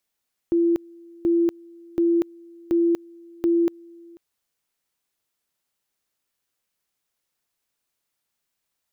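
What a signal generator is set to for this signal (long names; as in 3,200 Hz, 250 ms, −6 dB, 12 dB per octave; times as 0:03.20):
tone at two levels in turn 339 Hz −16 dBFS, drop 26.5 dB, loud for 0.24 s, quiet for 0.49 s, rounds 5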